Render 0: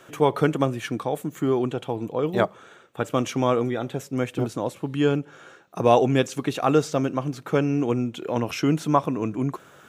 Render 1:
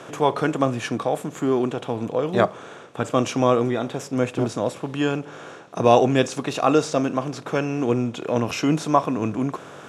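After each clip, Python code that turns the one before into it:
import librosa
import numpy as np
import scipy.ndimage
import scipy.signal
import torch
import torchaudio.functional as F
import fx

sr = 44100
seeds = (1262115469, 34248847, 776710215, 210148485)

y = fx.bin_compress(x, sr, power=0.6)
y = scipy.signal.sosfilt(scipy.signal.butter(4, 11000.0, 'lowpass', fs=sr, output='sos'), y)
y = fx.noise_reduce_blind(y, sr, reduce_db=7)
y = F.gain(torch.from_numpy(y), 1.0).numpy()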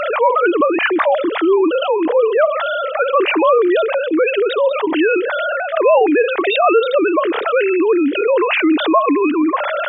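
y = fx.sine_speech(x, sr)
y = fx.low_shelf(y, sr, hz=420.0, db=-4.5)
y = fx.env_flatten(y, sr, amount_pct=70)
y = F.gain(torch.from_numpy(y), 2.5).numpy()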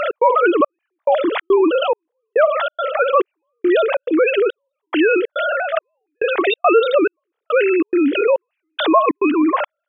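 y = fx.step_gate(x, sr, bpm=140, pattern='x.xxxx....xx', floor_db=-60.0, edge_ms=4.5)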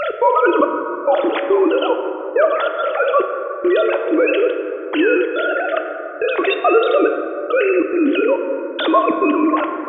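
y = fx.rev_plate(x, sr, seeds[0], rt60_s=3.3, hf_ratio=0.3, predelay_ms=0, drr_db=4.5)
y = F.gain(torch.from_numpy(y), -1.0).numpy()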